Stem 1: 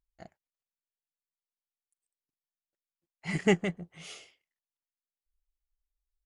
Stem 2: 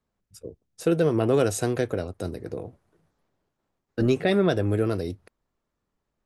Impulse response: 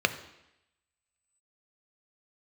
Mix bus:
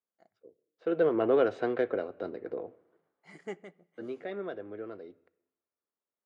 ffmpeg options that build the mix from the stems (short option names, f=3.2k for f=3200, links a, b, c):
-filter_complex "[0:a]highshelf=f=2.5k:g=-9,bandreject=f=2.7k:w=12,volume=-14dB,asplit=2[a][b];[b]volume=-23.5dB[c];[1:a]lowpass=f=2.9k:w=0.5412,lowpass=f=2.9k:w=1.3066,volume=-4dB,afade=t=in:st=0.79:d=0.23:silence=0.223872,afade=t=out:st=2.82:d=0.63:silence=0.251189,asplit=3[d][e][f];[e]volume=-20dB[g];[f]apad=whole_len=275920[h];[a][h]sidechaincompress=threshold=-43dB:ratio=8:attack=6.5:release=206[i];[2:a]atrim=start_sample=2205[j];[c][g]amix=inputs=2:normalize=0[k];[k][j]afir=irnorm=-1:irlink=0[l];[i][d][l]amix=inputs=3:normalize=0,highpass=300,highshelf=f=8.8k:g=4"